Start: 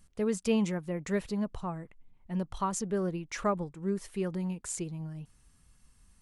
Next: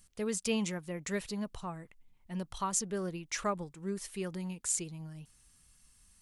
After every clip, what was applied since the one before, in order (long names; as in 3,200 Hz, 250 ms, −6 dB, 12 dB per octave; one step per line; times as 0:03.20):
high-shelf EQ 2,000 Hz +11.5 dB
level −5.5 dB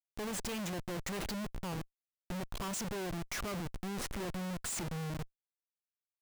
comparator with hysteresis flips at −43.5 dBFS